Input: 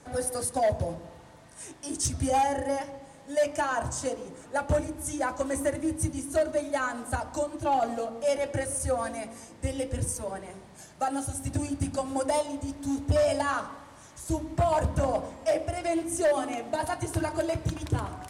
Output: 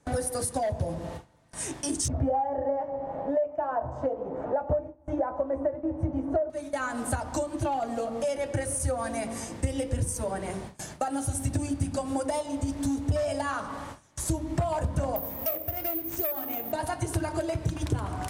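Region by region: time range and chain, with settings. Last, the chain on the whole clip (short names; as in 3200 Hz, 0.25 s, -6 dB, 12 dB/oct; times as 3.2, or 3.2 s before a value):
2.08–6.5 LPF 1300 Hz + bell 650 Hz +14 dB 1.2 oct + doubler 15 ms -11.5 dB
15.16–16.72 self-modulated delay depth 0.094 ms + careless resampling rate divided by 3×, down filtered, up zero stuff
whole clip: compressor 6:1, threshold -37 dBFS; gate with hold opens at -38 dBFS; low shelf 200 Hz +4.5 dB; gain +9 dB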